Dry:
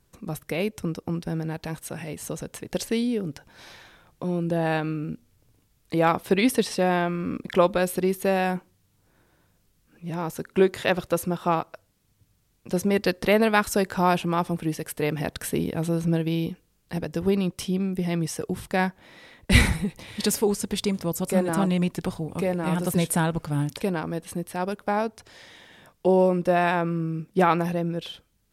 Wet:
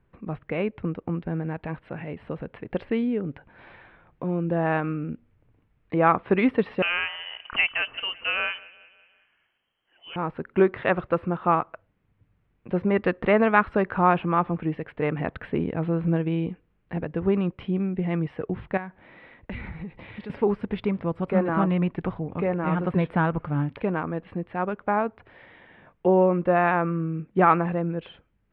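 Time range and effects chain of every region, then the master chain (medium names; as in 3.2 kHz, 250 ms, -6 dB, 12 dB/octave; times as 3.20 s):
6.82–10.16 s: bass shelf 130 Hz -11 dB + feedback delay 185 ms, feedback 52%, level -20 dB + frequency inversion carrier 3.2 kHz
18.77–20.30 s: treble shelf 6.5 kHz +11.5 dB + compression, threshold -32 dBFS
whole clip: inverse Chebyshev low-pass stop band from 6.1 kHz, stop band 50 dB; dynamic bell 1.2 kHz, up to +6 dB, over -44 dBFS, Q 2.9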